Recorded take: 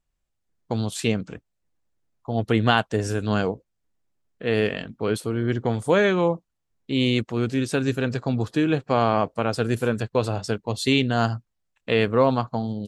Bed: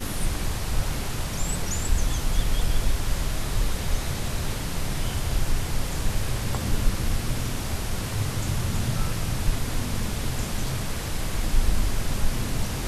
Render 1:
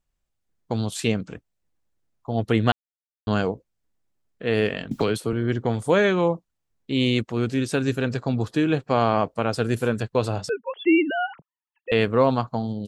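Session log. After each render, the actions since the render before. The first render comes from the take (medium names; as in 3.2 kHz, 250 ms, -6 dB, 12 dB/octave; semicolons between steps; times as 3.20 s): 2.72–3.27 s: mute; 4.91–5.33 s: three bands compressed up and down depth 100%; 10.49–11.92 s: formants replaced by sine waves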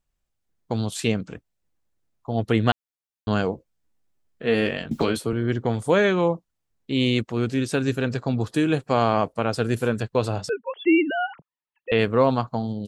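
3.51–5.23 s: doubling 13 ms -5 dB; 8.54–9.33 s: peaking EQ 9.9 kHz +13.5 dB; 10.53–11.99 s: low-pass 4 kHz 24 dB/octave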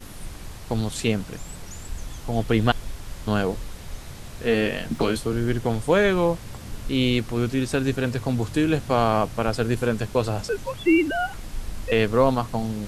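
add bed -10.5 dB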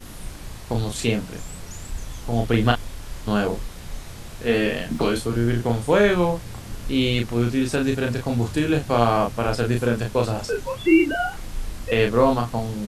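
doubling 34 ms -4 dB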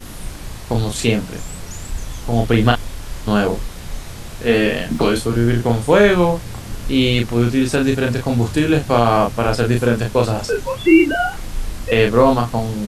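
trim +5.5 dB; peak limiter -1 dBFS, peak gain reduction 3 dB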